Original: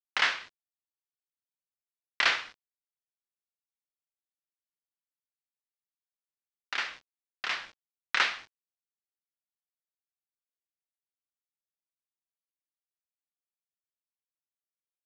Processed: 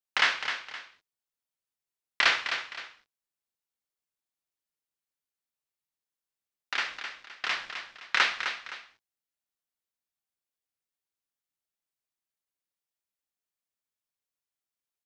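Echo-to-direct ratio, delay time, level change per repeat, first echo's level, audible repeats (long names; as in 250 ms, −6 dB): −8.0 dB, 259 ms, −9.5 dB, −8.5 dB, 2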